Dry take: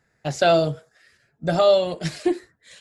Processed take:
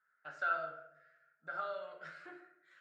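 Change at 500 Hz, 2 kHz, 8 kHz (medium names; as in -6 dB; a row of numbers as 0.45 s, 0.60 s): -27.0 dB, -8.5 dB, no reading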